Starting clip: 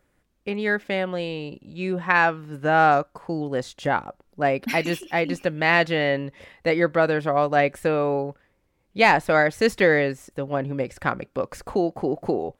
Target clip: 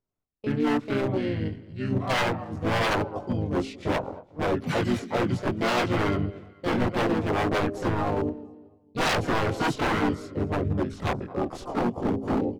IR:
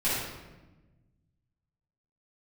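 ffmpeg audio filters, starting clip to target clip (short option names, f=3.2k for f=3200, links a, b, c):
-filter_complex "[0:a]lowpass=11k,bandreject=f=189.9:t=h:w=4,bandreject=f=379.8:t=h:w=4,bandreject=f=569.7:t=h:w=4,bandreject=f=759.6:t=h:w=4,agate=range=-21dB:threshold=-41dB:ratio=16:detection=peak,equalizer=f=160:t=o:w=0.33:g=7,equalizer=f=400:t=o:w=0.33:g=7,equalizer=f=1k:t=o:w=0.33:g=8,equalizer=f=1.6k:t=o:w=0.33:g=-9,equalizer=f=2.5k:t=o:w=0.33:g=-6,asetrate=31183,aresample=44100,atempo=1.41421,asplit=2[a][b];[b]aecho=0:1:228|456|684:0.0891|0.0312|0.0109[c];[a][c]amix=inputs=2:normalize=0,flanger=delay=19:depth=4.5:speed=0.65,acrossover=split=2800[d][e];[d]aeval=exprs='0.0891*(abs(mod(val(0)/0.0891+3,4)-2)-1)':c=same[f];[f][e]amix=inputs=2:normalize=0,asplit=3[g][h][i];[h]asetrate=35002,aresample=44100,atempo=1.25992,volume=-5dB[j];[i]asetrate=66075,aresample=44100,atempo=0.66742,volume=-5dB[k];[g][j][k]amix=inputs=3:normalize=0"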